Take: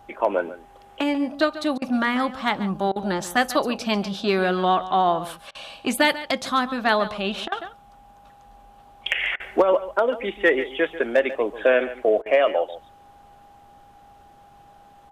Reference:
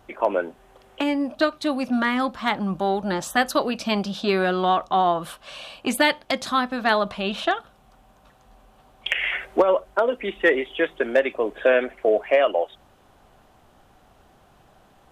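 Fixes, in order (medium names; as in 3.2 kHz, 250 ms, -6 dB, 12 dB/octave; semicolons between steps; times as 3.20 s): band-stop 810 Hz, Q 30; interpolate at 1.78/2.92/5.51/7.48/9.36/12.22 s, 38 ms; inverse comb 141 ms -14.5 dB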